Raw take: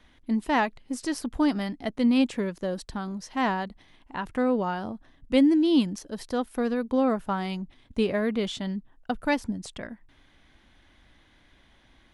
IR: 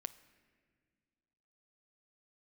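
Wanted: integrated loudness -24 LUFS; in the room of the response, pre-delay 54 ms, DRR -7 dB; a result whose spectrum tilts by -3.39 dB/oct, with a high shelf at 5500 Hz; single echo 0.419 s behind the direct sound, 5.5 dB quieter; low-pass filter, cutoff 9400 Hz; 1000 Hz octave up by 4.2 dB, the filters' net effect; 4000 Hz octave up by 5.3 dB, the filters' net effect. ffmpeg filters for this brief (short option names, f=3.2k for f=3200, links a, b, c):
-filter_complex "[0:a]lowpass=9.4k,equalizer=f=1k:t=o:g=5,equalizer=f=4k:t=o:g=8.5,highshelf=f=5.5k:g=-4.5,aecho=1:1:419:0.531,asplit=2[a][b];[1:a]atrim=start_sample=2205,adelay=54[c];[b][c]afir=irnorm=-1:irlink=0,volume=10dB[d];[a][d]amix=inputs=2:normalize=0,volume=-6.5dB"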